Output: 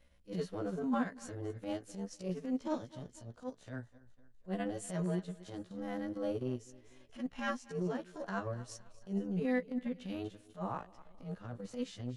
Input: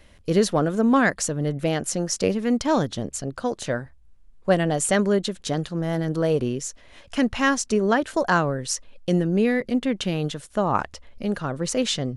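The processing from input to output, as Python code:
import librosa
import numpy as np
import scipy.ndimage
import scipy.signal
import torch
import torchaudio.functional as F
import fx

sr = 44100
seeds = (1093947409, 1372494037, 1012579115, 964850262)

y = fx.frame_reverse(x, sr, frame_ms=32.0)
y = fx.echo_feedback(y, sr, ms=246, feedback_pct=41, wet_db=-18.5)
y = fx.hpss(y, sr, part='percussive', gain_db=-13)
y = fx.transient(y, sr, attack_db=-11, sustain_db=-7)
y = F.gain(torch.from_numpy(y), -7.5).numpy()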